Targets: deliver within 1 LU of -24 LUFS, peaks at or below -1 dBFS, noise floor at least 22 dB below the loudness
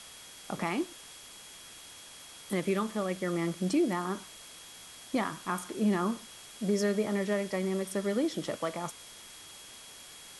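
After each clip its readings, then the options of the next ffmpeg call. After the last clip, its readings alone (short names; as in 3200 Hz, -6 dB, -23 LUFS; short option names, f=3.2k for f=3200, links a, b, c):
steady tone 3300 Hz; tone level -54 dBFS; noise floor -50 dBFS; noise floor target -54 dBFS; loudness -32.0 LUFS; peak -17.5 dBFS; loudness target -24.0 LUFS
-> -af "bandreject=f=3.3k:w=30"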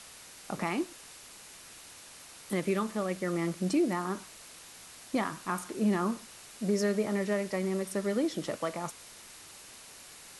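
steady tone none; noise floor -51 dBFS; noise floor target -54 dBFS
-> -af "afftdn=nr=6:nf=-51"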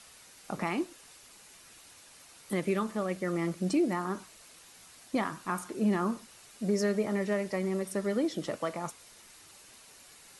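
noise floor -55 dBFS; loudness -32.5 LUFS; peak -18.0 dBFS; loudness target -24.0 LUFS
-> -af "volume=8.5dB"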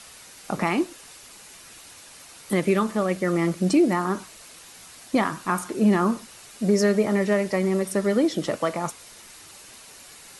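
loudness -24.0 LUFS; peak -9.5 dBFS; noise floor -47 dBFS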